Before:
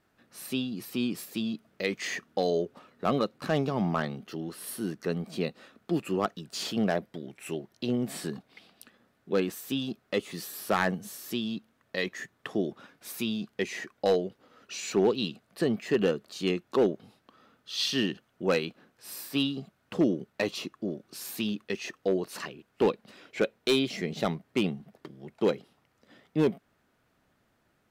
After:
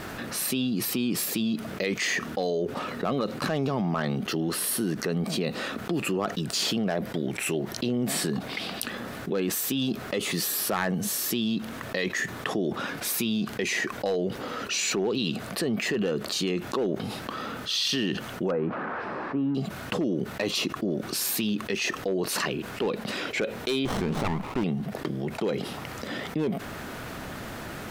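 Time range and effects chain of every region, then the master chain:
18.51–19.55 switching spikes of -25.5 dBFS + LPF 1300 Hz 24 dB/oct + notches 60/120 Hz
23.85–24.64 band shelf 1100 Hz +14.5 dB 1 oct + running maximum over 17 samples
whole clip: limiter -25 dBFS; fast leveller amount 70%; gain +3.5 dB

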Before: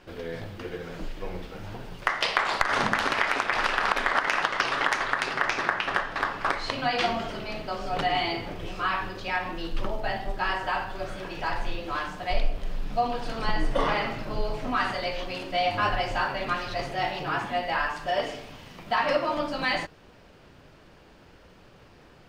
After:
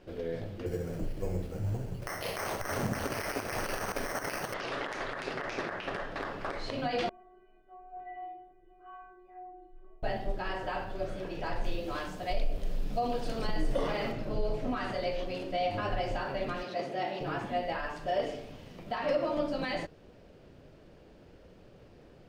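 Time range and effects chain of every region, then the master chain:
0.66–4.54 bell 100 Hz +11.5 dB 1.2 oct + careless resampling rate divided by 6×, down filtered, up hold
7.09–10.03 LPF 2000 Hz 24 dB/oct + metallic resonator 360 Hz, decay 0.76 s, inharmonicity 0.008
11.64–14.12 high shelf 5200 Hz +10.5 dB + short-mantissa float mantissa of 6-bit
16.63–17.21 HPF 170 Hz 24 dB/oct + high shelf 7700 Hz -5.5 dB
whole clip: limiter -18 dBFS; resonant low shelf 740 Hz +6.5 dB, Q 1.5; gain -8 dB

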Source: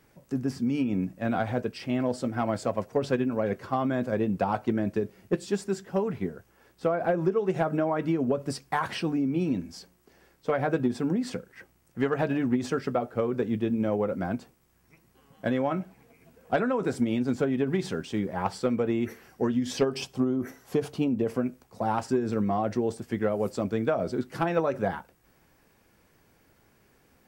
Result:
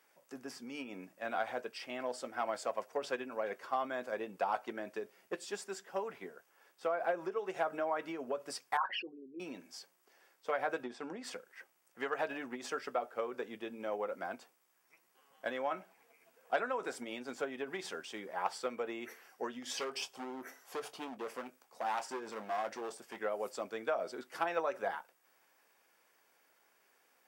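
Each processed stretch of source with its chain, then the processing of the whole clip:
8.77–9.4 formant sharpening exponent 3 + HPF 410 Hz 6 dB/oct + comb 5.4 ms, depth 39%
10.83–11.24 gate -37 dBFS, range -6 dB + air absorption 72 m + mismatched tape noise reduction encoder only
19.62–23.2 overloaded stage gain 24.5 dB + doubler 23 ms -12 dB
whole clip: HPF 640 Hz 12 dB/oct; notch 4100 Hz, Q 20; gain -4 dB

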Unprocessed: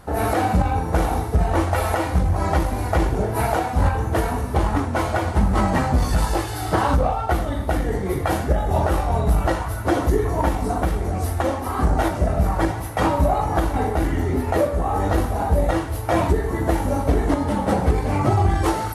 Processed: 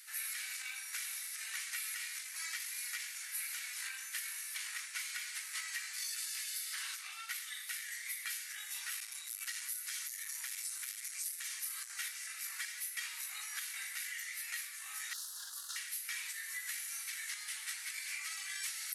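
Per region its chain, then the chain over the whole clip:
9–11.9 tone controls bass +5 dB, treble +5 dB + compressor 2.5:1, threshold -16 dBFS + core saturation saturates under 160 Hz
15.13–15.76 minimum comb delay 2.9 ms + Chebyshev band-stop 1200–4200 Hz + high shelf 10000 Hz -8.5 dB
whole clip: steep high-pass 2100 Hz 36 dB/oct; bell 3100 Hz -7.5 dB 0.89 oct; compressor, threshold -43 dBFS; gain +5 dB

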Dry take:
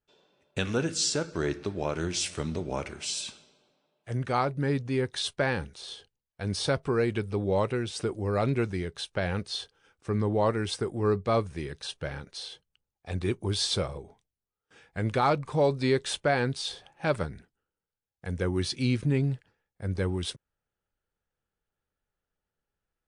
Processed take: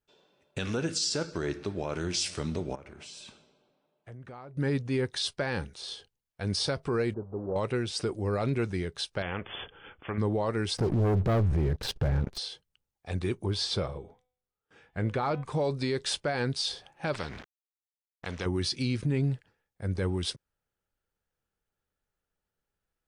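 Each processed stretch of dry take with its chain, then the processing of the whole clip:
2.75–4.57 high shelf 2800 Hz -11.5 dB + compressor, threshold -43 dBFS
7.14–7.56 block floating point 3-bit + Gaussian blur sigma 11 samples + low shelf 300 Hz -9.5 dB
9.22–10.18 treble ducked by the level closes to 1600 Hz, closed at -25.5 dBFS + brick-wall FIR low-pass 3500 Hz + spectral compressor 2:1
10.77–12.38 tilt -4 dB/oct + sample leveller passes 3 + compressor, threshold -22 dBFS
13.46–15.44 high shelf 4100 Hz -11.5 dB + de-hum 250.9 Hz, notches 15
17.13–18.46 sample gate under -53 dBFS + air absorption 150 m + spectral compressor 2:1
whole clip: dynamic EQ 4900 Hz, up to +7 dB, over -50 dBFS, Q 3.2; limiter -20.5 dBFS

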